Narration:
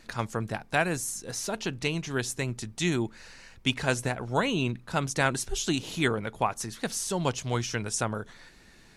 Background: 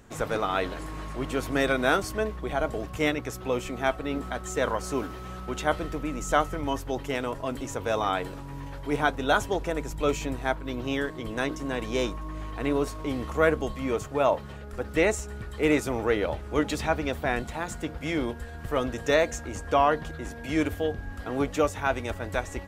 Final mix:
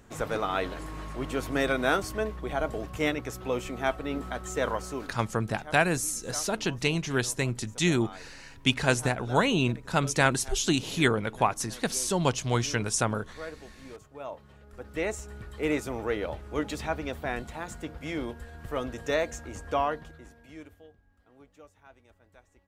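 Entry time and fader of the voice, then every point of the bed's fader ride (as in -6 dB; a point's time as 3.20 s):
5.00 s, +2.5 dB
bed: 4.76 s -2 dB
5.51 s -18 dB
14.10 s -18 dB
15.27 s -5 dB
19.79 s -5 dB
21.03 s -28.5 dB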